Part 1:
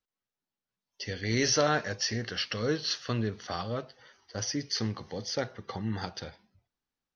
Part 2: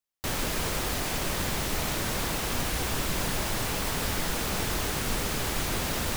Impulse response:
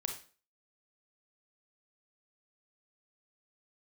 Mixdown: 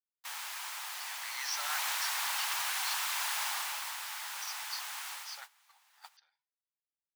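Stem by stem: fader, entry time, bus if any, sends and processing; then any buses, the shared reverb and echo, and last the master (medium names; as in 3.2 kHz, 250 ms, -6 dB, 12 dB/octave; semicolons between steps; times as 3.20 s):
-9.0 dB, 0.00 s, no send, none
1.44 s -8 dB -> 1.76 s -1 dB -> 3.43 s -1 dB -> 4.00 s -8 dB -> 5.08 s -8 dB -> 5.52 s -19 dB, 0.00 s, no send, none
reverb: none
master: elliptic high-pass 850 Hz, stop band 80 dB; gate -45 dBFS, range -16 dB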